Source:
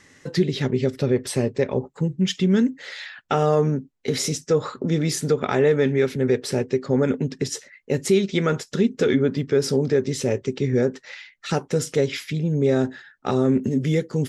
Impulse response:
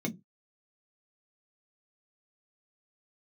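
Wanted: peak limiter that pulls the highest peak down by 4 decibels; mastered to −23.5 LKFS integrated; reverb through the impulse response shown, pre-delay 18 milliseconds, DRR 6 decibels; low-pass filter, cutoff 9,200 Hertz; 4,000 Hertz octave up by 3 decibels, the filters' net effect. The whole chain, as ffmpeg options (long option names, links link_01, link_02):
-filter_complex "[0:a]lowpass=9200,equalizer=frequency=4000:width_type=o:gain=4,alimiter=limit=-12dB:level=0:latency=1,asplit=2[link_01][link_02];[1:a]atrim=start_sample=2205,adelay=18[link_03];[link_02][link_03]afir=irnorm=-1:irlink=0,volume=-9.5dB[link_04];[link_01][link_04]amix=inputs=2:normalize=0,volume=-6dB"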